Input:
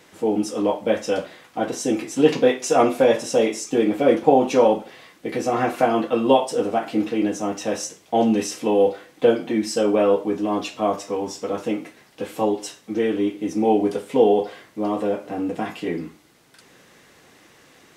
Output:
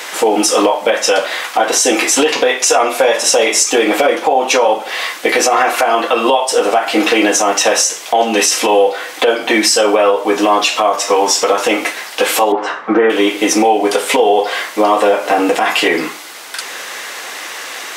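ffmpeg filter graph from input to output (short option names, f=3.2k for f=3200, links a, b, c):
-filter_complex "[0:a]asettb=1/sr,asplit=3[a][b][c];[a]atrim=end=12.524[d];[b]atrim=start=12.52:end=13.1,asetpts=PTS-STARTPTS,afade=t=in:d=0.004:c=qsin,afade=t=out:st=0.576:d=0.004:c=qsin,lowpass=f=1.3k:t=q:w=2.3,lowshelf=f=220:g=9.5[e];[c]atrim=start=13.096[f];[d][e]acrossfade=d=0.004:c1=hsin:c2=qsin[g];[g][f]acrossfade=d=0.004:c1=qsin:c2=hsin,highpass=750,acompressor=threshold=-35dB:ratio=6,alimiter=level_in=28.5dB:limit=-1dB:release=50:level=0:latency=1,volume=-1dB"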